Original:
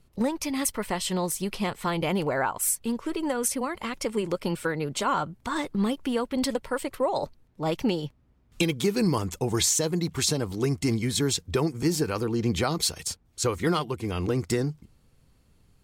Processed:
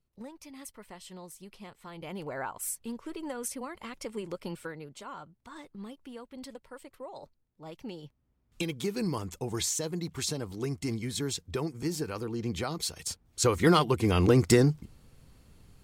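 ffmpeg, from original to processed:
-af "volume=4.47,afade=t=in:st=1.89:d=0.54:silence=0.354813,afade=t=out:st=4.51:d=0.44:silence=0.398107,afade=t=in:st=7.78:d=0.99:silence=0.316228,afade=t=in:st=12.9:d=1.08:silence=0.237137"

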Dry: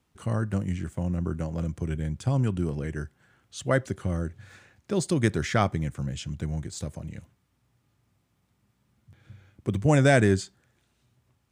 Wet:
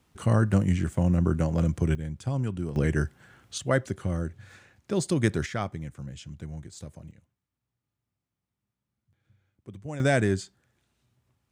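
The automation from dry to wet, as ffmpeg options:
-af "asetnsamples=n=441:p=0,asendcmd='1.95 volume volume -4dB;2.76 volume volume 7.5dB;3.58 volume volume -0.5dB;5.46 volume volume -7.5dB;7.11 volume volume -16dB;10 volume volume -3.5dB',volume=1.88"

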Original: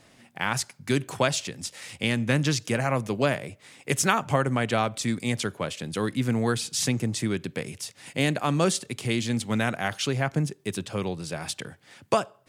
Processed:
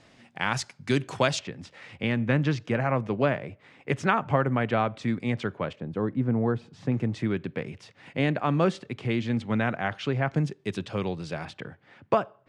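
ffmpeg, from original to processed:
-af "asetnsamples=n=441:p=0,asendcmd='1.39 lowpass f 2200;5.73 lowpass f 1000;6.92 lowpass f 2300;10.28 lowpass f 4000;11.45 lowpass f 2100',lowpass=5600"

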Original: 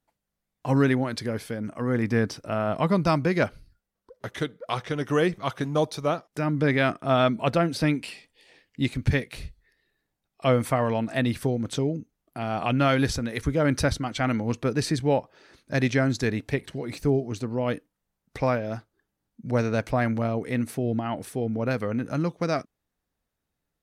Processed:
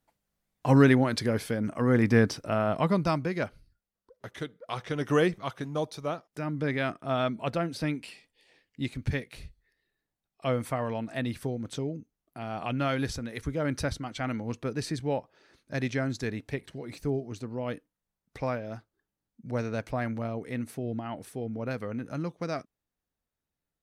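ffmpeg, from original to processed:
-af "volume=2.82,afade=t=out:st=2.19:d=1.13:silence=0.334965,afade=t=in:st=4.67:d=0.48:silence=0.446684,afade=t=out:st=5.15:d=0.37:silence=0.473151"

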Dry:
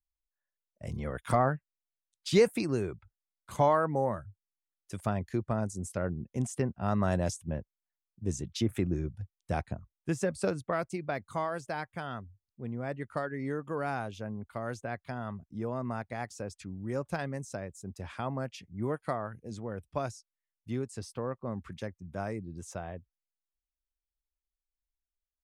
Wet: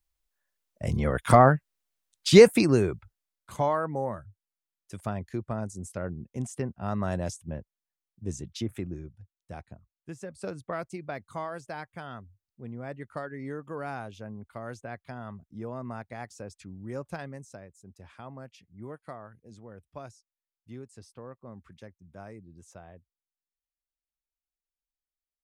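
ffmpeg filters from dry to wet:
-af "volume=7.08,afade=t=out:st=2.61:d=0.98:silence=0.281838,afade=t=out:st=8.48:d=0.67:silence=0.375837,afade=t=in:st=10.3:d=0.4:silence=0.421697,afade=t=out:st=17.04:d=0.66:silence=0.473151"

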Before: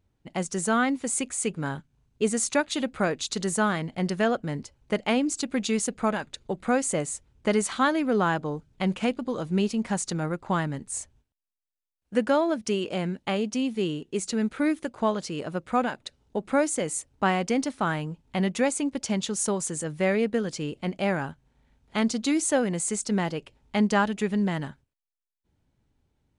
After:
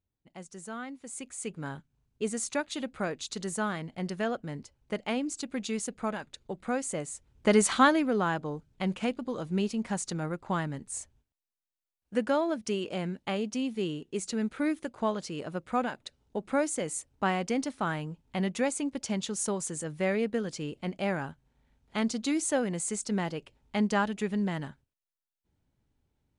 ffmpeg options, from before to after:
-af "volume=1.5,afade=t=in:st=1:d=0.66:silence=0.354813,afade=t=in:st=7.14:d=0.58:silence=0.298538,afade=t=out:st=7.72:d=0.42:silence=0.398107"

